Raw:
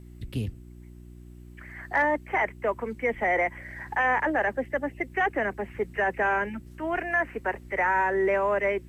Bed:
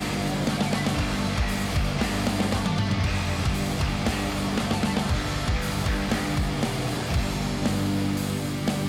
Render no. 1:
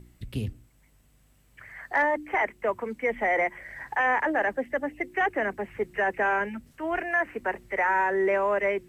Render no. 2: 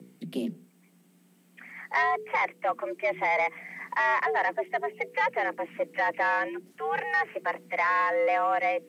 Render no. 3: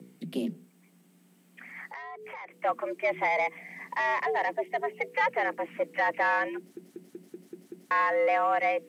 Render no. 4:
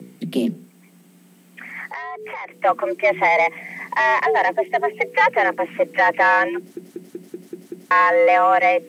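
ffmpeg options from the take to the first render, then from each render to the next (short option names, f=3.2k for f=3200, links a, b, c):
-af "bandreject=f=60:t=h:w=4,bandreject=f=120:t=h:w=4,bandreject=f=180:t=h:w=4,bandreject=f=240:t=h:w=4,bandreject=f=300:t=h:w=4,bandreject=f=360:t=h:w=4"
-af "asoftclip=type=tanh:threshold=-16dB,afreqshift=130"
-filter_complex "[0:a]asettb=1/sr,asplit=3[a][b][c];[a]atrim=end=1.874[d];[b]atrim=start=1.87:end=2.54,asetpts=PTS-STARTPTS,afade=t=in:d=0.004:c=qsin,afade=t=out:st=0.666:d=0.004:c=qsin,acompressor=threshold=-39dB:ratio=8:attack=3.2:release=140:knee=1:detection=peak[e];[c]atrim=start=2.536[f];[d][e]acrossfade=d=0.004:c1=hsin:c2=qsin[g];[g][f]acrossfade=d=0.004:c1=qsin:c2=hsin,asettb=1/sr,asplit=3[h][i][j];[h]atrim=end=3.284[k];[i]atrim=start=3.28:end=4.79,asetpts=PTS-STARTPTS,afade=t=in:d=0.004:c=qsin,afade=t=out:st=1.506:d=0.004:c=qsin,equalizer=f=1.4k:w=2:g=-8.5[l];[j]atrim=start=4.786[m];[k][l]acrossfade=d=0.004:c1=hsin:c2=qsin[n];[n][m]acrossfade=d=0.004:c1=qsin:c2=hsin,asplit=8[o][p][q][r][s][t][u][v];[o]atrim=end=6.772[w];[p]atrim=start=6.578:end=6.772[x];[q]atrim=start=6.578:end=6.772[y];[r]atrim=start=6.578:end=6.772[z];[s]atrim=start=6.578:end=6.772[aa];[t]atrim=start=6.578:end=6.772[ab];[u]atrim=start=6.578:end=6.772[ac];[v]atrim=start=7.908[ad];[w][x]acrossfade=d=0.004:c1=hsin:c2=hsin[ae];[ae][y]acrossfade=d=0.004:c1=hsin:c2=hsin[af];[af][z]acrossfade=d=0.004:c1=hsin:c2=hsin[ag];[ag][aa]acrossfade=d=0.004:c1=hsin:c2=hsin[ah];[ah][ab]acrossfade=d=0.004:c1=hsin:c2=hsin[ai];[ai][ac]acrossfade=d=0.004:c1=hsin:c2=hsin[aj];[aj][ad]acrossfade=d=0.004:c1=hsin:c2=hsin"
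-af "volume=10.5dB"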